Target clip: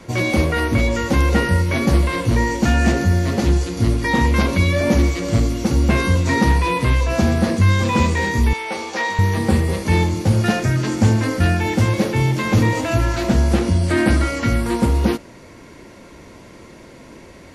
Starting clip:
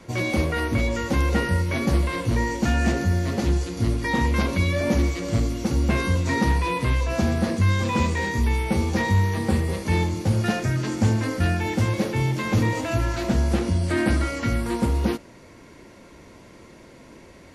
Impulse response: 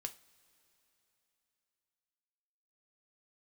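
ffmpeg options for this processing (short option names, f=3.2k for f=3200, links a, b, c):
-filter_complex "[0:a]asettb=1/sr,asplit=3[a][b][c];[a]atrim=end=8.534[d];[b]atrim=start=8.53:end=9.19,asetpts=PTS-STARTPTS,afade=t=in:d=0.004:c=qsin,afade=t=out:st=0.656:d=0.004:c=qsin,highpass=570,lowpass=7.2k[e];[c]atrim=start=9.186[f];[d][e]acrossfade=d=0.004:c1=hsin:c2=qsin[g];[g][f]acrossfade=d=0.004:c1=qsin:c2=hsin,volume=5.5dB"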